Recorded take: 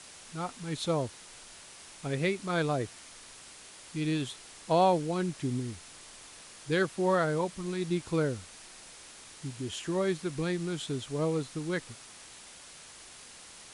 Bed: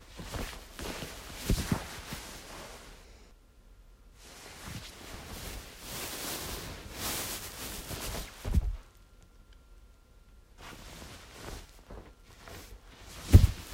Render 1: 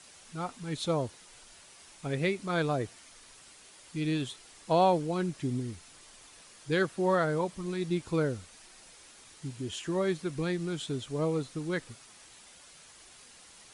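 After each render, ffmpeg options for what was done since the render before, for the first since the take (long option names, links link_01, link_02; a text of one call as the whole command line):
ffmpeg -i in.wav -af "afftdn=noise_reduction=6:noise_floor=-51" out.wav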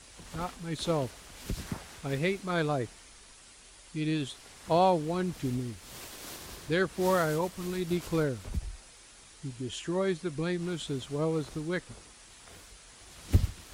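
ffmpeg -i in.wav -i bed.wav -filter_complex "[1:a]volume=-6.5dB[link_01];[0:a][link_01]amix=inputs=2:normalize=0" out.wav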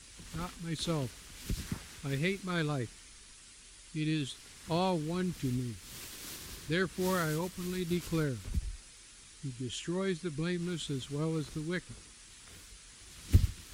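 ffmpeg -i in.wav -af "equalizer=frequency=690:width_type=o:width=1.4:gain=-11" out.wav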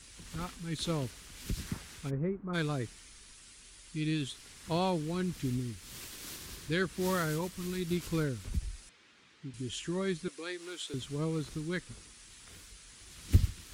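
ffmpeg -i in.wav -filter_complex "[0:a]asplit=3[link_01][link_02][link_03];[link_01]afade=type=out:start_time=2.09:duration=0.02[link_04];[link_02]lowpass=frequency=1200:width=0.5412,lowpass=frequency=1200:width=1.3066,afade=type=in:start_time=2.09:duration=0.02,afade=type=out:start_time=2.53:duration=0.02[link_05];[link_03]afade=type=in:start_time=2.53:duration=0.02[link_06];[link_04][link_05][link_06]amix=inputs=3:normalize=0,asettb=1/sr,asplit=3[link_07][link_08][link_09];[link_07]atrim=end=8.894[link_10];[link_08]atrim=start=8.89:end=9.54,asetpts=PTS-STARTPTS,afade=type=in:duration=0.004:curve=qsin,afade=type=out:start_time=0.646:duration=0.004:curve=qsin,highpass=170,lowpass=2900[link_11];[link_09]atrim=start=9.536[link_12];[link_10][link_11]acrossfade=duration=0.004:curve1=hsin:curve2=qsin[link_13];[link_13][link_12]acrossfade=duration=0.004:curve1=qsin:curve2=hsin,asettb=1/sr,asplit=3[link_14][link_15][link_16];[link_14]atrim=end=10.284[link_17];[link_15]atrim=start=10.28:end=10.94,asetpts=PTS-STARTPTS,afade=type=in:duration=0.004:curve=qsin,afade=type=out:start_time=0.656:duration=0.004:curve=qsin,highpass=frequency=380:width=0.5412,highpass=frequency=380:width=1.3066[link_18];[link_16]atrim=start=10.936[link_19];[link_17][link_18]acrossfade=duration=0.004:curve1=hsin:curve2=qsin[link_20];[link_20][link_19]acrossfade=duration=0.004:curve1=qsin:curve2=hsin" out.wav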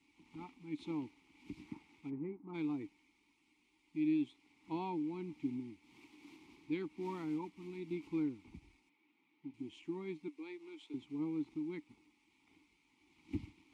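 ffmpeg -i in.wav -filter_complex "[0:a]asplit=2[link_01][link_02];[link_02]aeval=exprs='sgn(val(0))*max(abs(val(0))-0.00355,0)':channel_layout=same,volume=-3.5dB[link_03];[link_01][link_03]amix=inputs=2:normalize=0,asplit=3[link_04][link_05][link_06];[link_04]bandpass=frequency=300:width_type=q:width=8,volume=0dB[link_07];[link_05]bandpass=frequency=870:width_type=q:width=8,volume=-6dB[link_08];[link_06]bandpass=frequency=2240:width_type=q:width=8,volume=-9dB[link_09];[link_07][link_08][link_09]amix=inputs=3:normalize=0" out.wav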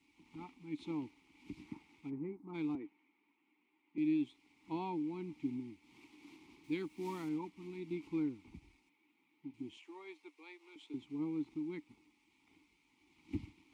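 ffmpeg -i in.wav -filter_complex "[0:a]asettb=1/sr,asplit=3[link_01][link_02][link_03];[link_01]atrim=end=2.754[link_04];[link_02]atrim=start=2.75:end=3.98,asetpts=PTS-STARTPTS,afade=type=in:duration=0.004:curve=qsin,afade=type=out:start_time=1.226:duration=0.004:curve=qsin,acrossover=split=190 2700:gain=0.0891 1 0.0794[link_05][link_06][link_07];[link_05][link_06][link_07]amix=inputs=3:normalize=0[link_08];[link_03]atrim=start=3.976[link_09];[link_04][link_08]acrossfade=duration=0.004:curve1=hsin:curve2=qsin[link_10];[link_10][link_09]acrossfade=duration=0.004:curve1=qsin:curve2=hsin,asettb=1/sr,asplit=3[link_11][link_12][link_13];[link_11]atrim=end=6.644[link_14];[link_12]atrim=start=6.64:end=7.29,asetpts=PTS-STARTPTS,afade=type=in:duration=0.004:curve=qsin,afade=type=out:start_time=0.646:duration=0.004:curve=qsin,aemphasis=mode=production:type=50kf[link_15];[link_13]atrim=start=7.286[link_16];[link_14][link_15]acrossfade=duration=0.004:curve1=hsin:curve2=qsin[link_17];[link_17][link_16]acrossfade=duration=0.004:curve1=qsin:curve2=hsin,asettb=1/sr,asplit=3[link_18][link_19][link_20];[link_18]atrim=end=9.774[link_21];[link_19]atrim=start=9.77:end=10.76,asetpts=PTS-STARTPTS,afade=type=in:duration=0.004:curve=qsin,afade=type=out:start_time=0.986:duration=0.004:curve=qsin,highpass=frequency=470:width=0.5412,highpass=frequency=470:width=1.3066[link_22];[link_20]atrim=start=10.756[link_23];[link_21][link_22]acrossfade=duration=0.004:curve1=hsin:curve2=qsin[link_24];[link_24][link_23]acrossfade=duration=0.004:curve1=qsin:curve2=hsin" out.wav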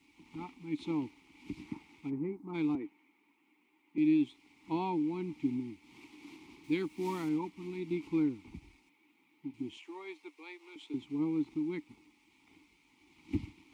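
ffmpeg -i in.wav -af "volume=6dB" out.wav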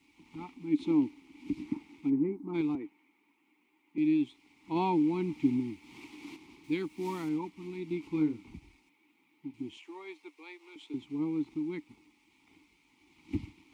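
ffmpeg -i in.wav -filter_complex "[0:a]asettb=1/sr,asplit=3[link_01][link_02][link_03];[link_01]atrim=end=0.554[link_04];[link_02]atrim=start=0.55:end=2.61,asetpts=PTS-STARTPTS,afade=type=in:duration=0.004:curve=qsin,afade=type=out:start_time=2.056:duration=0.004:curve=qsin,equalizer=frequency=280:width_type=o:width=0.77:gain=9.5[link_05];[link_03]atrim=start=2.606[link_06];[link_04][link_05]acrossfade=duration=0.004:curve1=hsin:curve2=qsin[link_07];[link_07][link_06]acrossfade=duration=0.004:curve1=qsin:curve2=hsin,asplit=3[link_08][link_09][link_10];[link_08]afade=type=out:start_time=4.75:duration=0.02[link_11];[link_09]acontrast=37,afade=type=in:start_time=4.75:duration=0.02,afade=type=out:start_time=6.35:duration=0.02[link_12];[link_10]afade=type=in:start_time=6.35:duration=0.02[link_13];[link_11][link_12][link_13]amix=inputs=3:normalize=0,asettb=1/sr,asplit=3[link_14][link_15][link_16];[link_14]atrim=end=8.124[link_17];[link_15]atrim=start=8.12:end=8.55,asetpts=PTS-STARTPTS,afade=type=in:duration=0.004:curve=qsin,afade=type=out:start_time=0.426:duration=0.004:curve=qsin,asplit=2[link_18][link_19];[link_19]adelay=26,volume=-6dB[link_20];[link_18][link_20]amix=inputs=2:normalize=0,atrim=end_sample=18963[link_21];[link_16]atrim=start=8.546[link_22];[link_17][link_21]acrossfade=duration=0.004:curve1=hsin:curve2=qsin[link_23];[link_23][link_22]acrossfade=duration=0.004:curve1=qsin:curve2=hsin" out.wav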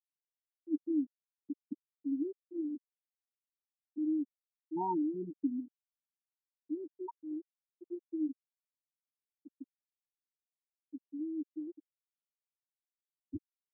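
ffmpeg -i in.wav -af "afftfilt=real='re*gte(hypot(re,im),0.178)':imag='im*gte(hypot(re,im),0.178)':win_size=1024:overlap=0.75,lowshelf=frequency=320:gain=-10.5" out.wav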